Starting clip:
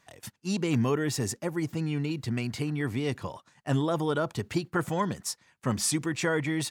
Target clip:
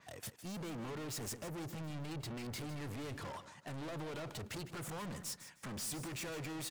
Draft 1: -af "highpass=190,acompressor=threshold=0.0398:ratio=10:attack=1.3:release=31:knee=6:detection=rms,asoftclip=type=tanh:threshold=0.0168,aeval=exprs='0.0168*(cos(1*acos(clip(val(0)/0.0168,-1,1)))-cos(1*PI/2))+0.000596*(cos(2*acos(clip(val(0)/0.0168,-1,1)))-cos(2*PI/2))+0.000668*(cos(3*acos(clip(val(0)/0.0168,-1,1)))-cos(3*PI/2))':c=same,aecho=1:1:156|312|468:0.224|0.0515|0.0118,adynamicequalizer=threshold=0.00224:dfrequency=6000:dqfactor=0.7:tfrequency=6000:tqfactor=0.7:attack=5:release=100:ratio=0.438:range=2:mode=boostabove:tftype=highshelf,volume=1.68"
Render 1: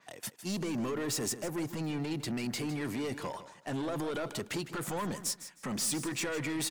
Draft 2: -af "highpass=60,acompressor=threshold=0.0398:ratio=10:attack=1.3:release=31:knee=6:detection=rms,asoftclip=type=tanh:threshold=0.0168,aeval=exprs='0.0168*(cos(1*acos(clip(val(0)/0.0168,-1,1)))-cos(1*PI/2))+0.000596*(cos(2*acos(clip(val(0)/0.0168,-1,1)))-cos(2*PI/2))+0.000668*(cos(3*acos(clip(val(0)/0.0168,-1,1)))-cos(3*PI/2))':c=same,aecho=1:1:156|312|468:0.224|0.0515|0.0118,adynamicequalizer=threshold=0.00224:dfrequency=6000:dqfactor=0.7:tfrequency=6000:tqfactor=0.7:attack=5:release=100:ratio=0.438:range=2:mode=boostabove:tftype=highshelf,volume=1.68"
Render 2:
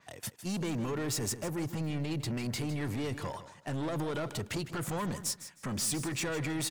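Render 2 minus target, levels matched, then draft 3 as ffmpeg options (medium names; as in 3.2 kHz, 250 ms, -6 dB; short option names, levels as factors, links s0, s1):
saturation: distortion -5 dB
-af "highpass=60,acompressor=threshold=0.0398:ratio=10:attack=1.3:release=31:knee=6:detection=rms,asoftclip=type=tanh:threshold=0.00501,aeval=exprs='0.0168*(cos(1*acos(clip(val(0)/0.0168,-1,1)))-cos(1*PI/2))+0.000596*(cos(2*acos(clip(val(0)/0.0168,-1,1)))-cos(2*PI/2))+0.000668*(cos(3*acos(clip(val(0)/0.0168,-1,1)))-cos(3*PI/2))':c=same,aecho=1:1:156|312|468:0.224|0.0515|0.0118,adynamicequalizer=threshold=0.00224:dfrequency=6000:dqfactor=0.7:tfrequency=6000:tqfactor=0.7:attack=5:release=100:ratio=0.438:range=2:mode=boostabove:tftype=highshelf,volume=1.68"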